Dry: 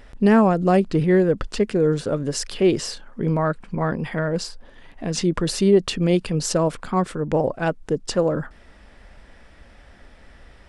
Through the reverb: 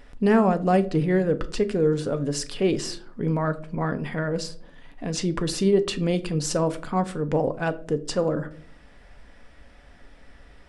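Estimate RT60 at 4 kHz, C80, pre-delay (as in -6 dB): 0.30 s, 22.0 dB, 4 ms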